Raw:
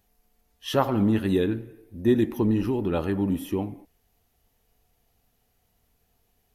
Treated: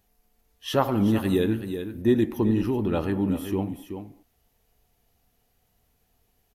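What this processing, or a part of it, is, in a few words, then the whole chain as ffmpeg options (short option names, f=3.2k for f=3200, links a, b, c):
ducked delay: -filter_complex "[0:a]asplit=3[a][b][c];[b]adelay=379,volume=-8.5dB[d];[c]apad=whole_len=305231[e];[d][e]sidechaincompress=threshold=-23dB:ratio=8:attack=16:release=499[f];[a][f]amix=inputs=2:normalize=0,asettb=1/sr,asplit=3[g][h][i];[g]atrim=end=0.854[j];[h]atrim=start=0.85:end=2.02,asetpts=PTS-STARTPTS,afade=t=in:d=0.004:c=qsin,afade=t=out:st=1.166:d=0.004:c=qsin,highshelf=f=7.8k:g=10[k];[i]atrim=start=2.016[l];[j][k]acrossfade=d=0.004:c1=hsin:c2=qsin[m];[m][l]acrossfade=d=0.004:c1=qsin:c2=hsin"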